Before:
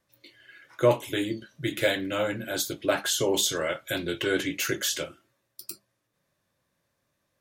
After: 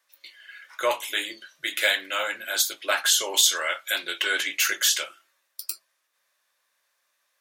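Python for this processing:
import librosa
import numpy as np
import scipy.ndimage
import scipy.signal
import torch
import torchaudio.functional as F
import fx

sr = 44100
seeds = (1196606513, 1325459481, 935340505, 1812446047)

y = scipy.signal.sosfilt(scipy.signal.butter(2, 1100.0, 'highpass', fs=sr, output='sos'), x)
y = y * 10.0 ** (7.0 / 20.0)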